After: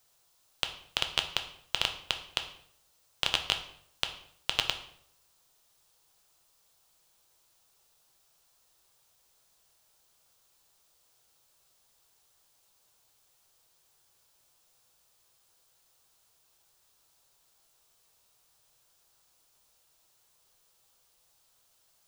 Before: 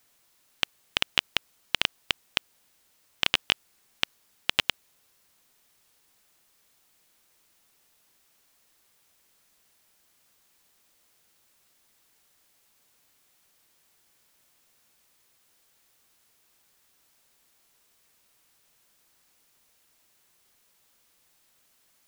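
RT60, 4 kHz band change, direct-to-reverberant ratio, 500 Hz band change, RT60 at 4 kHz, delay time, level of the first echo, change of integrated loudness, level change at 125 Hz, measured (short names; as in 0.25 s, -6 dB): 0.65 s, -2.5 dB, 5.5 dB, -1.5 dB, 0.50 s, none, none, -3.5 dB, -1.0 dB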